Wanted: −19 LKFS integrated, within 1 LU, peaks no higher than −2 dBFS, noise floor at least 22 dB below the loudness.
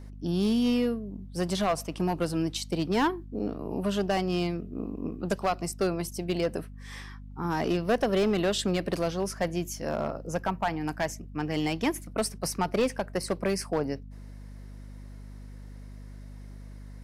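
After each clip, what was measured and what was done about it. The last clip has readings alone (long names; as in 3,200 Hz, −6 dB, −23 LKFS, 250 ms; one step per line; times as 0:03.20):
share of clipped samples 1.2%; peaks flattened at −19.5 dBFS; mains hum 50 Hz; hum harmonics up to 250 Hz; level of the hum −41 dBFS; integrated loudness −29.5 LKFS; sample peak −19.5 dBFS; target loudness −19.0 LKFS
→ clipped peaks rebuilt −19.5 dBFS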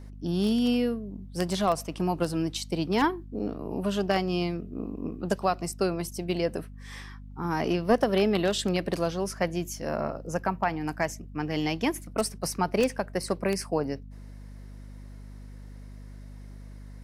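share of clipped samples 0.0%; mains hum 50 Hz; hum harmonics up to 150 Hz; level of the hum −41 dBFS
→ mains-hum notches 50/100/150 Hz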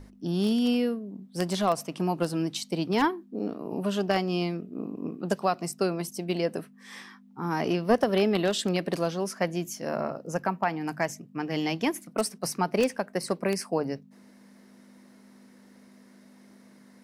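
mains hum none found; integrated loudness −29.0 LKFS; sample peak −10.5 dBFS; target loudness −19.0 LKFS
→ level +10 dB
brickwall limiter −2 dBFS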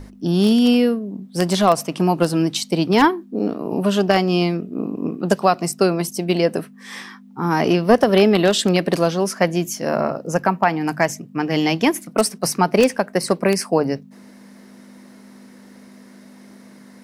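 integrated loudness −19.0 LKFS; sample peak −2.0 dBFS; background noise floor −45 dBFS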